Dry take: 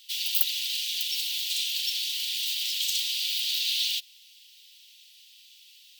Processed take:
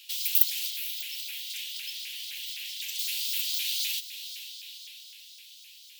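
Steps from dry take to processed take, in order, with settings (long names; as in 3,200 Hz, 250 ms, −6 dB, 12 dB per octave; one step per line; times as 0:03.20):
bass and treble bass −5 dB, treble +4 dB, from 0:00.69 treble −6 dB, from 0:02.98 treble +4 dB
feedback delay with all-pass diffusion 469 ms, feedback 42%, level −13 dB
dynamic equaliser 3,800 Hz, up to −7 dB, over −39 dBFS, Q 0.79
pitch modulation by a square or saw wave saw up 3.9 Hz, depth 250 cents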